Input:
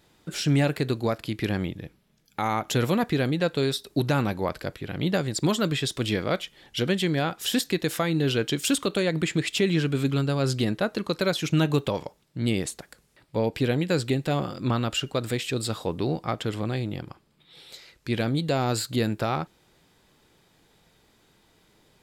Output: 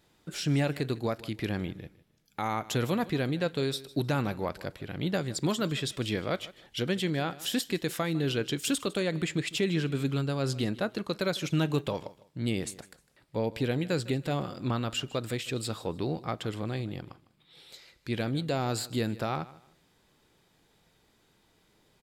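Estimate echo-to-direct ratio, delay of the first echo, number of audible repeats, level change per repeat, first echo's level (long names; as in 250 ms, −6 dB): −18.5 dB, 154 ms, 2, −11.5 dB, −19.0 dB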